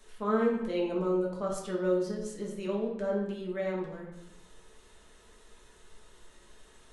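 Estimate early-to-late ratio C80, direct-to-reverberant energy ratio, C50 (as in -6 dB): 6.5 dB, -3.0 dB, 3.5 dB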